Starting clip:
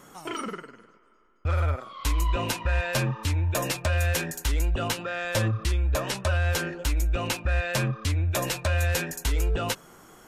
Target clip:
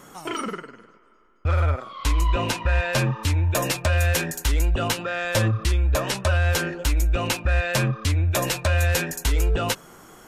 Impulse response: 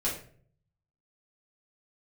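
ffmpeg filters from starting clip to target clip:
-filter_complex "[0:a]asettb=1/sr,asplit=3[a][b][c];[a]atrim=end=0.594[d];[b]atrim=start=0.59:end=2.98,asetpts=PTS-STARTPTS,afade=t=in:d=0.004:c=qsin,afade=t=out:st=2.386:d=0.004:c=qsin,highshelf=f=11k:g=-10.5[e];[c]atrim=start=2.976[f];[d][e]acrossfade=d=0.004:c1=hsin:c2=qsin[g];[g][f]acrossfade=d=0.004:c1=qsin:c2=hsin,volume=4dB"

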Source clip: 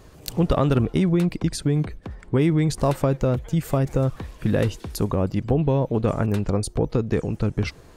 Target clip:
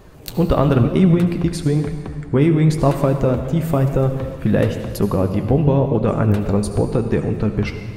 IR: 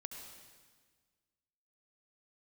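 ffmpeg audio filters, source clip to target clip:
-filter_complex "[0:a]asplit=2[a][b];[1:a]atrim=start_sample=2205,asetrate=43659,aresample=44100[c];[b][c]afir=irnorm=-1:irlink=0,volume=6.5dB[d];[a][d]amix=inputs=2:normalize=0,flanger=delay=5:depth=9.9:regen=62:speed=0.99:shape=sinusoidal,equalizer=f=6.5k:w=0.64:g=-6,volume=2dB"

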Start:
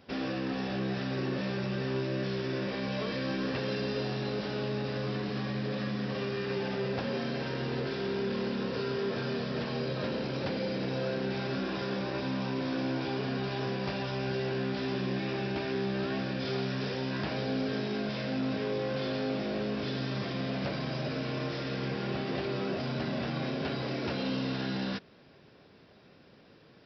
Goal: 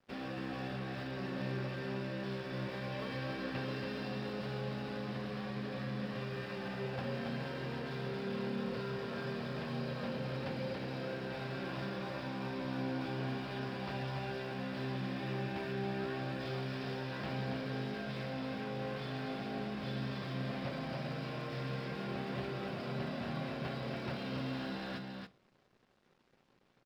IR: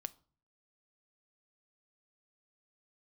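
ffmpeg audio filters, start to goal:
-filter_complex "[0:a]aemphasis=mode=reproduction:type=50fm,acrossover=split=260|450|2300[a][b][c][d];[b]acompressor=threshold=-53dB:ratio=6[e];[a][e][c][d]amix=inputs=4:normalize=0,aeval=exprs='sgn(val(0))*max(abs(val(0))-0.00158,0)':c=same,aecho=1:1:279:0.596[f];[1:a]atrim=start_sample=2205[g];[f][g]afir=irnorm=-1:irlink=0,volume=-2dB"

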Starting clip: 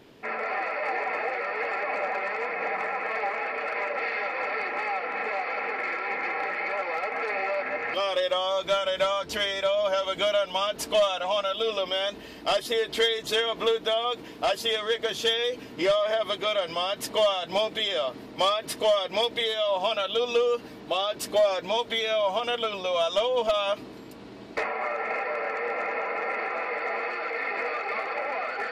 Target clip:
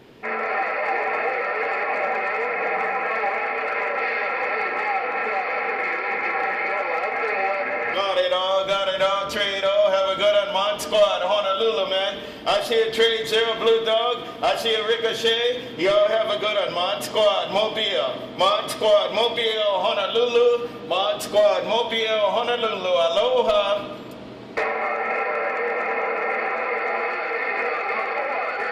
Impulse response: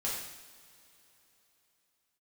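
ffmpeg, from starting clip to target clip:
-filter_complex "[0:a]asplit=2[a][b];[1:a]atrim=start_sample=2205,lowpass=4.2k[c];[b][c]afir=irnorm=-1:irlink=0,volume=-6dB[d];[a][d]amix=inputs=2:normalize=0,volume=2dB"

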